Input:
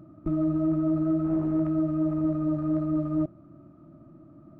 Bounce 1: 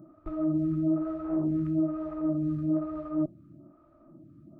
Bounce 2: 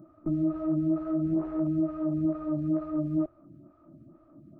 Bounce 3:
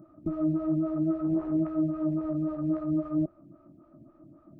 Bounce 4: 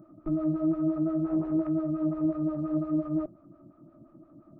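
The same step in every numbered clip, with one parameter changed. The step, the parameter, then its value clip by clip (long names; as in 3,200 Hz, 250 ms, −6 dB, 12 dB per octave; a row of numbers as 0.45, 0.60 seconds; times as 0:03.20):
phaser with staggered stages, speed: 1.1, 2.2, 3.7, 5.7 Hertz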